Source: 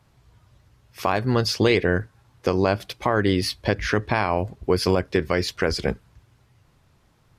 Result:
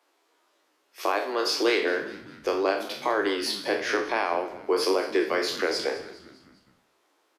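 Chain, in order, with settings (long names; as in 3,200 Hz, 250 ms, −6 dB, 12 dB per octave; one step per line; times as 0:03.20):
peak hold with a decay on every bin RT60 0.53 s
Butterworth high-pass 290 Hz 72 dB per octave
echo with shifted repeats 203 ms, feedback 50%, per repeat −69 Hz, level −16.5 dB
flanger 1.8 Hz, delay 8 ms, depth 8 ms, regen +61%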